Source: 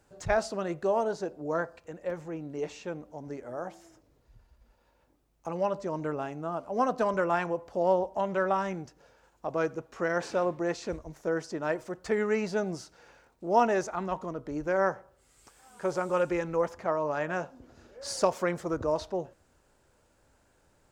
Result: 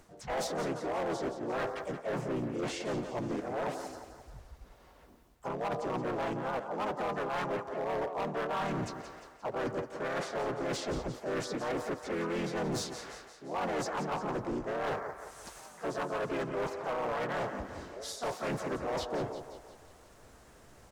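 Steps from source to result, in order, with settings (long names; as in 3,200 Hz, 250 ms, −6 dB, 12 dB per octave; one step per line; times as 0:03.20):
dynamic equaliser 920 Hz, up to +5 dB, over −42 dBFS, Q 1
reversed playback
downward compressor 16 to 1, threshold −37 dBFS, peak gain reduction 24 dB
reversed playback
pitch-shifted copies added −4 semitones 0 dB, +3 semitones −3 dB, +4 semitones −8 dB
feedback echo with a high-pass in the loop 175 ms, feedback 55%, high-pass 320 Hz, level −10 dB
hard clipping −35 dBFS, distortion −9 dB
level +5 dB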